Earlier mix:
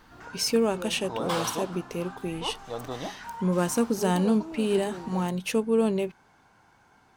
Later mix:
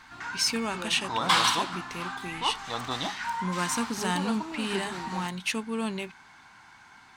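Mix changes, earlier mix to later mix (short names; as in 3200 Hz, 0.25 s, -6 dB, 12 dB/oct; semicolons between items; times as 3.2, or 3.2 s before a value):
speech -7.5 dB; master: add graphic EQ 250/500/1000/2000/4000/8000 Hz +3/-8/+7/+10/+9/+7 dB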